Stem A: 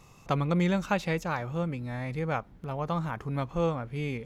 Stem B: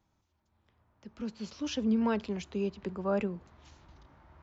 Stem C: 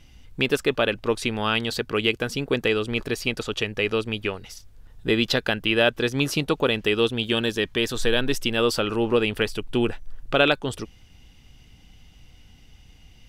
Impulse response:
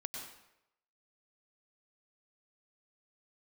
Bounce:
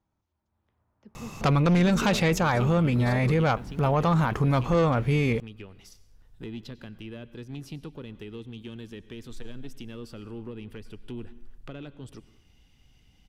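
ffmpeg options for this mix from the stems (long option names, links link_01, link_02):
-filter_complex "[0:a]aeval=exprs='0.237*sin(PI/2*2.51*val(0)/0.237)':channel_layout=same,adelay=1150,volume=-4dB[link_01];[1:a]highshelf=frequency=2500:gain=-8.5,volume=-9dB,asplit=2[link_02][link_03];[2:a]acrossover=split=280[link_04][link_05];[link_05]acompressor=threshold=-35dB:ratio=10[link_06];[link_04][link_06]amix=inputs=2:normalize=0,asoftclip=type=tanh:threshold=-19.5dB,adelay=1350,volume=-9.5dB,asplit=2[link_07][link_08];[link_08]volume=-16.5dB[link_09];[link_03]apad=whole_len=645455[link_10];[link_07][link_10]sidechaingate=range=-7dB:threshold=-55dB:ratio=16:detection=peak[link_11];[3:a]atrim=start_sample=2205[link_12];[link_09][link_12]afir=irnorm=-1:irlink=0[link_13];[link_01][link_02][link_11][link_13]amix=inputs=4:normalize=0,acontrast=38,alimiter=limit=-16.5dB:level=0:latency=1:release=20"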